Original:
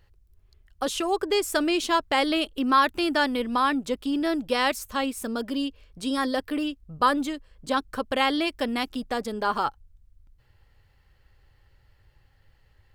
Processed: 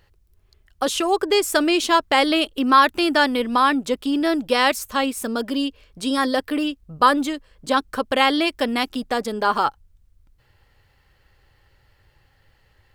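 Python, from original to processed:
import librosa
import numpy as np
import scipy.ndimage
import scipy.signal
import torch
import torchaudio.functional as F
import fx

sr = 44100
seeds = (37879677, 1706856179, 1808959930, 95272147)

y = fx.low_shelf(x, sr, hz=130.0, db=-7.5)
y = y * librosa.db_to_amplitude(6.0)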